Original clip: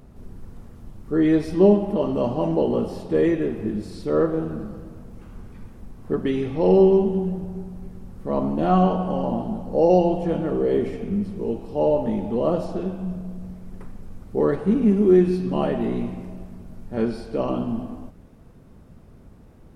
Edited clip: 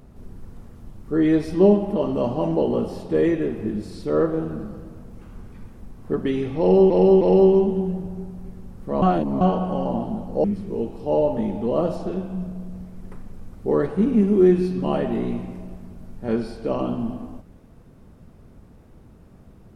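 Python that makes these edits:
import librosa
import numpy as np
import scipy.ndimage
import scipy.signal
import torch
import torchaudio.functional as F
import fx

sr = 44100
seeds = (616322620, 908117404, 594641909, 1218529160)

y = fx.edit(x, sr, fx.repeat(start_s=6.59, length_s=0.31, count=3),
    fx.reverse_span(start_s=8.4, length_s=0.39),
    fx.cut(start_s=9.82, length_s=1.31), tone=tone)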